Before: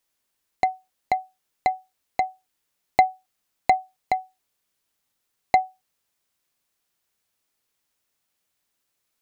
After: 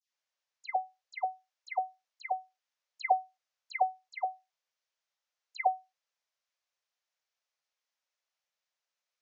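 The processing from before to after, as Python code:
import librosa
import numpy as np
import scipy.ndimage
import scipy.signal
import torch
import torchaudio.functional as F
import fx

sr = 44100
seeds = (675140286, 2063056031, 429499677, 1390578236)

y = scipy.signal.sosfilt(scipy.signal.ellip(3, 1.0, 40, [530.0, 6200.0], 'bandpass', fs=sr, output='sos'), x)
y = fx.dispersion(y, sr, late='lows', ms=136.0, hz=1800.0)
y = y * 10.0 ** (-8.0 / 20.0)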